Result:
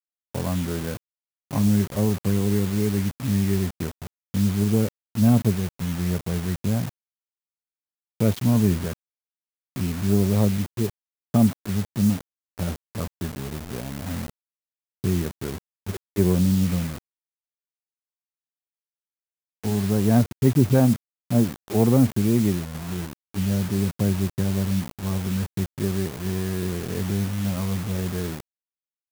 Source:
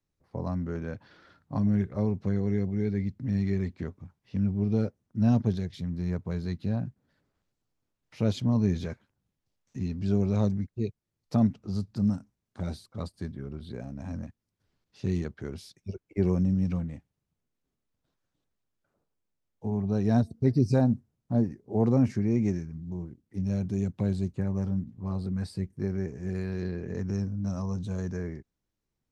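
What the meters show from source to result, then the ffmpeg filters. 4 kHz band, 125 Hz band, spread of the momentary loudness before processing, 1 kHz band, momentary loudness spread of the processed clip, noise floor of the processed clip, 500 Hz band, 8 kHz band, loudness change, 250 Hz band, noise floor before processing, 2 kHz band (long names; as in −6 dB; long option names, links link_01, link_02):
+12.5 dB, +5.5 dB, 14 LU, +6.5 dB, 13 LU, below −85 dBFS, +5.5 dB, can't be measured, +5.5 dB, +5.5 dB, −84 dBFS, +9.5 dB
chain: -af "adynamicsmooth=sensitivity=7.5:basefreq=800,acrusher=bits=6:mix=0:aa=0.000001,crystalizer=i=1:c=0,volume=5.5dB"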